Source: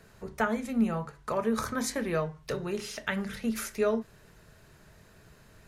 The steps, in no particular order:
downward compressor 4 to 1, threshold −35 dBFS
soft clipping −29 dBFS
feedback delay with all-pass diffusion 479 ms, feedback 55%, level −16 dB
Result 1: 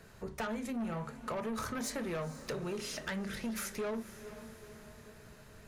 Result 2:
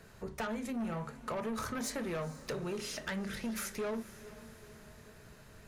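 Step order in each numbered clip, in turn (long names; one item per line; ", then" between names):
soft clipping, then feedback delay with all-pass diffusion, then downward compressor
soft clipping, then downward compressor, then feedback delay with all-pass diffusion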